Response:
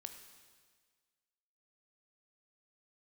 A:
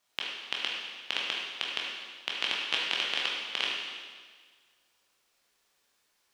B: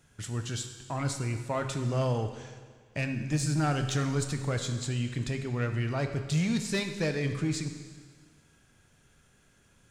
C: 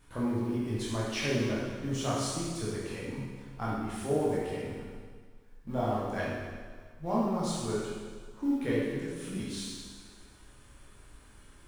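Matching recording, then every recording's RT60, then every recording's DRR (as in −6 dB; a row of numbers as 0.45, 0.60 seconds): B; 1.6, 1.6, 1.6 seconds; −3.5, 6.0, −8.0 decibels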